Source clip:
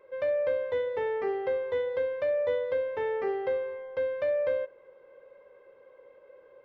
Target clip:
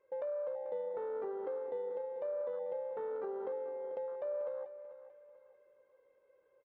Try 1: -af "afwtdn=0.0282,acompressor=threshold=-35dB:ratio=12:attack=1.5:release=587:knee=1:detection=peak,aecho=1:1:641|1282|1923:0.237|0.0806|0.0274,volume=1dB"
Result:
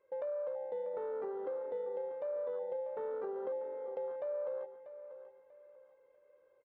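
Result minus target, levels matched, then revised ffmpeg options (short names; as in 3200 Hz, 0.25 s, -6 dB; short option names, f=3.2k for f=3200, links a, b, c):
echo 0.201 s late
-af "afwtdn=0.0282,acompressor=threshold=-35dB:ratio=12:attack=1.5:release=587:knee=1:detection=peak,aecho=1:1:440|880|1320:0.237|0.0806|0.0274,volume=1dB"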